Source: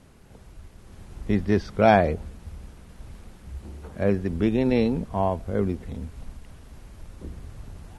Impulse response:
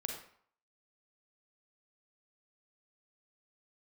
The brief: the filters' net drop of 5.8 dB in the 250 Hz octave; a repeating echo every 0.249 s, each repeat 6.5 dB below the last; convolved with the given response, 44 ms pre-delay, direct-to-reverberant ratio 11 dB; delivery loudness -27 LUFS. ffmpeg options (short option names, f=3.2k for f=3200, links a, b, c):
-filter_complex "[0:a]equalizer=f=250:t=o:g=-7.5,aecho=1:1:249|498|747|996|1245|1494:0.473|0.222|0.105|0.0491|0.0231|0.0109,asplit=2[a][b];[1:a]atrim=start_sample=2205,adelay=44[c];[b][c]afir=irnorm=-1:irlink=0,volume=-11.5dB[d];[a][d]amix=inputs=2:normalize=0,volume=-1.5dB"